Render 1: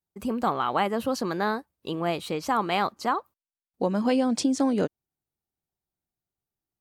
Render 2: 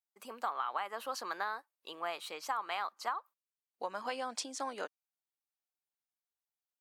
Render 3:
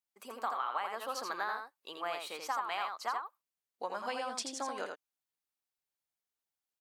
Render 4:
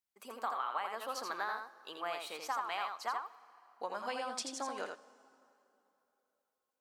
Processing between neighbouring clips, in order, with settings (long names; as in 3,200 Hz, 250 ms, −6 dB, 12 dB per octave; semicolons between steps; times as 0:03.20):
high-pass filter 800 Hz 12 dB per octave; dynamic equaliser 1,200 Hz, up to +6 dB, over −41 dBFS, Q 1; downward compressor 10 to 1, threshold −25 dBFS, peak gain reduction 9 dB; level −6.5 dB
single-tap delay 83 ms −5 dB
dense smooth reverb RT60 3.2 s, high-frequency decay 0.7×, DRR 17.5 dB; level −1.5 dB